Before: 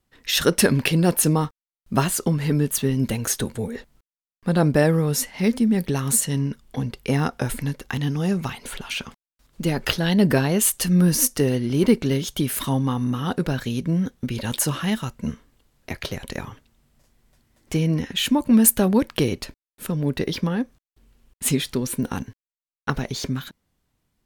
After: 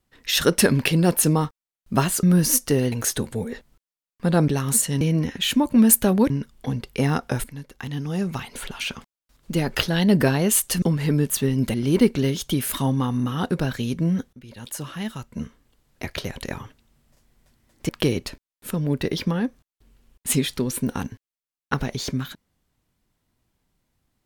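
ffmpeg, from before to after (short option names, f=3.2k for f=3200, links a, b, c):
-filter_complex "[0:a]asplit=11[a][b][c][d][e][f][g][h][i][j][k];[a]atrim=end=2.232[l];[b]atrim=start=10.918:end=11.612[m];[c]atrim=start=3.148:end=4.712[n];[d]atrim=start=5.868:end=6.402[o];[e]atrim=start=17.758:end=19.052[p];[f]atrim=start=6.398:end=7.54,asetpts=PTS-STARTPTS,afade=t=out:st=1.138:d=0.004:c=hsin:silence=0.211349[q];[g]atrim=start=7.54:end=10.922,asetpts=PTS-STARTPTS,afade=t=in:d=1.17:silence=0.211349[r];[h]atrim=start=2.228:end=3.152[s];[i]atrim=start=11.608:end=14.2,asetpts=PTS-STARTPTS,afade=t=out:st=2.588:d=0.004:c=hsin:silence=0.0944061[t];[j]atrim=start=14.2:end=17.762,asetpts=PTS-STARTPTS,afade=t=in:d=1.72:silence=0.0944061[u];[k]atrim=start=19.048[v];[l][m]acrossfade=d=0.004:c1=hsin:c2=hsin[w];[w][n]acrossfade=d=0.004:c1=hsin:c2=hsin[x];[x][o]acrossfade=d=0.004:c1=hsin:c2=hsin[y];[y][p]acrossfade=d=0.004:c1=hsin:c2=hsin[z];[q][r]concat=n=2:v=0:a=1[aa];[z][aa]acrossfade=d=0.004:c1=hsin:c2=hsin[ab];[ab][s]acrossfade=d=0.004:c1=hsin:c2=hsin[ac];[t][u]concat=n=2:v=0:a=1[ad];[ac][ad]acrossfade=d=0.004:c1=hsin:c2=hsin[ae];[ae][v]acrossfade=d=0.004:c1=hsin:c2=hsin"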